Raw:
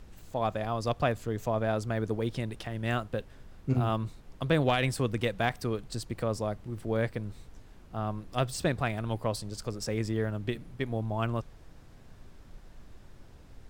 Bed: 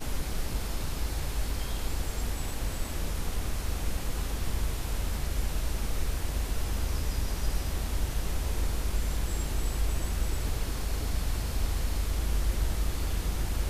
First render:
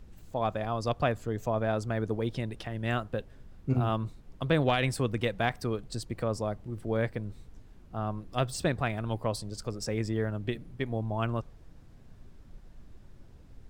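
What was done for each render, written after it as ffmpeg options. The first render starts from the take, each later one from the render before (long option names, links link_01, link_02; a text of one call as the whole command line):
ffmpeg -i in.wav -af "afftdn=noise_reduction=6:noise_floor=-53" out.wav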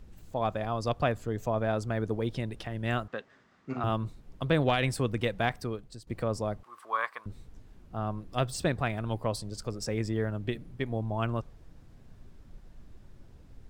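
ffmpeg -i in.wav -filter_complex "[0:a]asettb=1/sr,asplit=3[link_01][link_02][link_03];[link_01]atrim=end=3.084[link_04];[link_02]atrim=start=3.08:end=3.84,asetpts=PTS-STARTPTS,afade=type=in:duration=0.004:curve=qsin,afade=type=out:start_time=0.756:duration=0.004:curve=qsin,highpass=290,equalizer=frequency=340:width_type=q:width=4:gain=-4,equalizer=frequency=510:width_type=q:width=4:gain=-5,equalizer=frequency=1200:width_type=q:width=4:gain=8,equalizer=frequency=1900:width_type=q:width=4:gain=8,lowpass=frequency=7200:width=0.5412,lowpass=frequency=7200:width=1.3066[link_05];[link_03]atrim=start=3.836[link_06];[link_04][link_05]acrossfade=duration=0.004:curve1=hsin:curve2=qsin[link_07];[link_07][link_06]acrossfade=duration=0.004:curve1=qsin:curve2=hsin,asettb=1/sr,asplit=3[link_08][link_09][link_10];[link_08]atrim=end=6.634[link_11];[link_09]atrim=start=6.63:end=7.26,asetpts=PTS-STARTPTS,afade=type=in:duration=0.004:curve=qsin,afade=type=out:start_time=0.626:duration=0.004:curve=qsin,highpass=frequency=1100:width_type=q:width=12[link_12];[link_10]atrim=start=7.256[link_13];[link_11][link_12]acrossfade=duration=0.004:curve1=hsin:curve2=qsin[link_14];[link_14][link_13]acrossfade=duration=0.004:curve1=qsin:curve2=hsin,asplit=2[link_15][link_16];[link_15]atrim=end=6.07,asetpts=PTS-STARTPTS,afade=type=out:start_time=5.49:duration=0.58:silence=0.158489[link_17];[link_16]atrim=start=6.07,asetpts=PTS-STARTPTS,afade=type=in:duration=0.004:curve=hsin:silence=0.158489[link_18];[link_17][link_18]concat=n=2:v=0:a=1" out.wav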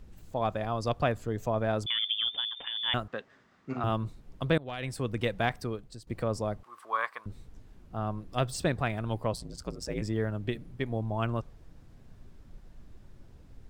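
ffmpeg -i in.wav -filter_complex "[0:a]asettb=1/sr,asplit=3[link_01][link_02][link_03];[link_01]atrim=end=1.864[link_04];[link_02]atrim=start=1.86:end=2.94,asetpts=PTS-STARTPTS,afade=type=in:duration=0.004:curve=qsin,afade=type=out:start_time=1.076:duration=0.004:curve=qsin,lowpass=frequency=3100:width_type=q:width=0.5098,lowpass=frequency=3100:width_type=q:width=0.6013,lowpass=frequency=3100:width_type=q:width=0.9,lowpass=frequency=3100:width_type=q:width=2.563,afreqshift=-3600[link_05];[link_03]atrim=start=2.936[link_06];[link_04][link_05]acrossfade=duration=0.004:curve1=hsin:curve2=qsin[link_07];[link_07][link_06]acrossfade=duration=0.004:curve1=qsin:curve2=hsin,asettb=1/sr,asplit=3[link_08][link_09][link_10];[link_08]atrim=end=9.334[link_11];[link_09]atrim=start=9.33:end=10.02,asetpts=PTS-STARTPTS,afade=type=in:duration=0.004:curve=qsin,afade=type=out:start_time=0.686:duration=0.004:curve=qsin,aeval=exprs='val(0)*sin(2*PI*62*n/s)':channel_layout=same[link_12];[link_10]atrim=start=10.016[link_13];[link_11][link_12]acrossfade=duration=0.004:curve1=hsin:curve2=qsin[link_14];[link_14][link_13]acrossfade=duration=0.004:curve1=qsin:curve2=hsin,asplit=2[link_15][link_16];[link_15]atrim=end=4.58,asetpts=PTS-STARTPTS,afade=type=out:start_time=4.576:duration=0.004:curve=hsin:silence=0.0630957[link_17];[link_16]atrim=start=4.58,asetpts=PTS-STARTPTS,afade=type=in:duration=0.69:silence=0.0630957[link_18];[link_17][link_18]concat=n=2:v=0:a=1" out.wav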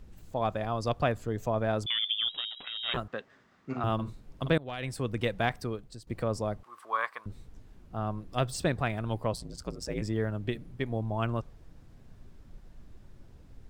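ffmpeg -i in.wav -filter_complex "[0:a]asplit=3[link_01][link_02][link_03];[link_01]afade=type=out:start_time=2.28:duration=0.02[link_04];[link_02]aeval=exprs='val(0)*sin(2*PI*280*n/s)':channel_layout=same,afade=type=in:start_time=2.28:duration=0.02,afade=type=out:start_time=2.96:duration=0.02[link_05];[link_03]afade=type=in:start_time=2.96:duration=0.02[link_06];[link_04][link_05][link_06]amix=inputs=3:normalize=0,asettb=1/sr,asplit=3[link_07][link_08][link_09];[link_07]atrim=end=3.944[link_10];[link_08]atrim=start=3.94:end=4.53,asetpts=PTS-STARTPTS,afade=type=in:duration=0.004:curve=qsin,afade=type=out:start_time=0.586:duration=0.004:curve=qsin,asplit=2[link_11][link_12];[link_12]adelay=49,volume=-8dB[link_13];[link_11][link_13]amix=inputs=2:normalize=0,atrim=end_sample=26019[link_14];[link_09]atrim=start=4.526[link_15];[link_10][link_14]acrossfade=duration=0.004:curve1=hsin:curve2=qsin[link_16];[link_16][link_15]acrossfade=duration=0.004:curve1=qsin:curve2=hsin" out.wav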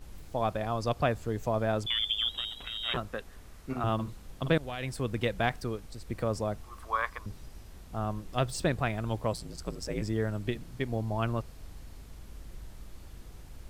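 ffmpeg -i in.wav -i bed.wav -filter_complex "[1:a]volume=-19dB[link_01];[0:a][link_01]amix=inputs=2:normalize=0" out.wav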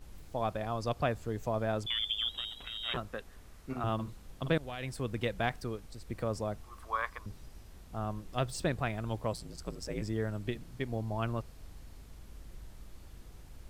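ffmpeg -i in.wav -af "volume=-3.5dB" out.wav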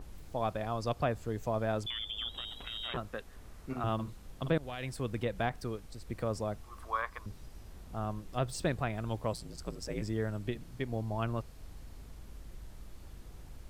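ffmpeg -i in.wav -filter_complex "[0:a]acrossover=split=1400[link_01][link_02];[link_01]acompressor=mode=upward:threshold=-42dB:ratio=2.5[link_03];[link_02]alimiter=level_in=6dB:limit=-24dB:level=0:latency=1:release=130,volume=-6dB[link_04];[link_03][link_04]amix=inputs=2:normalize=0" out.wav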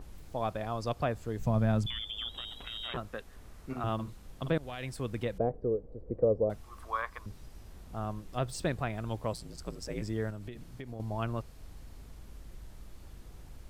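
ffmpeg -i in.wav -filter_complex "[0:a]asettb=1/sr,asplit=3[link_01][link_02][link_03];[link_01]atrim=end=1.394[link_04];[link_02]atrim=start=1.39:end=2,asetpts=PTS-STARTPTS,afade=type=in:duration=0.004:curve=qsin,afade=type=out:start_time=0.606:duration=0.004:curve=qsin,lowshelf=frequency=270:width_type=q:width=1.5:gain=9[link_05];[link_03]atrim=start=1.996[link_06];[link_04][link_05]acrossfade=duration=0.004:curve1=hsin:curve2=qsin[link_07];[link_07][link_06]acrossfade=duration=0.004:curve1=qsin:curve2=hsin,asettb=1/sr,asplit=3[link_08][link_09][link_10];[link_08]atrim=end=5.384[link_11];[link_09]atrim=start=5.38:end=6.5,asetpts=PTS-STARTPTS,afade=type=in:duration=0.004:curve=qsin,afade=type=out:start_time=1.116:duration=0.004:curve=qsin,lowpass=frequency=490:width_type=q:width=4.9[link_12];[link_10]atrim=start=6.496[link_13];[link_11][link_12]acrossfade=duration=0.004:curve1=hsin:curve2=qsin[link_14];[link_14][link_13]acrossfade=duration=0.004:curve1=qsin:curve2=hsin,asettb=1/sr,asplit=3[link_15][link_16][link_17];[link_15]atrim=end=10.304[link_18];[link_16]atrim=start=10.3:end=11,asetpts=PTS-STARTPTS,afade=type=in:duration=0.004:curve=qsin,afade=type=out:start_time=0.696:duration=0.004:curve=qsin,acompressor=threshold=-38dB:ratio=6:attack=3.2:release=140:knee=1:detection=peak[link_19];[link_17]atrim=start=10.996[link_20];[link_18][link_19]acrossfade=duration=0.004:curve1=hsin:curve2=qsin[link_21];[link_21][link_20]acrossfade=duration=0.004:curve1=qsin:curve2=hsin" out.wav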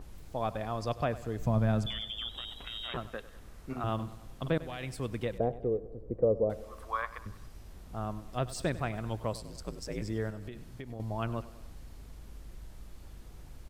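ffmpeg -i in.wav -af "aecho=1:1:98|196|294|392|490:0.141|0.0805|0.0459|0.0262|0.0149" out.wav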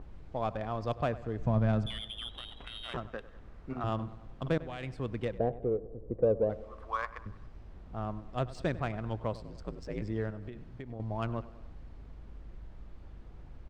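ffmpeg -i in.wav -af "adynamicsmooth=sensitivity=4.5:basefreq=2600" out.wav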